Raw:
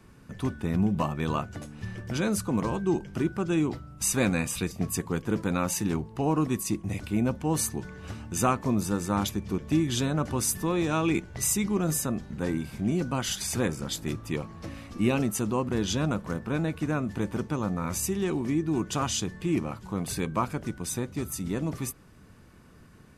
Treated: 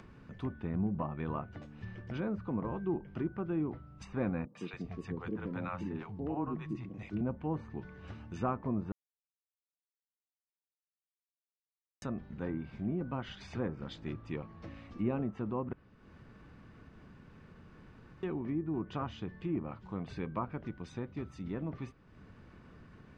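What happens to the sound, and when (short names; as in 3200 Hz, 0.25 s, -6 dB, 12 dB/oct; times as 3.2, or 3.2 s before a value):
4.45–7.21 three bands offset in time mids, highs, lows 0.1/0.28 s, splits 160/530 Hz
8.92–12.02 mute
15.73–18.23 room tone
whole clip: treble ducked by the level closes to 1300 Hz, closed at -23 dBFS; LPF 3300 Hz 12 dB/oct; upward compressor, threshold -38 dBFS; gain -8 dB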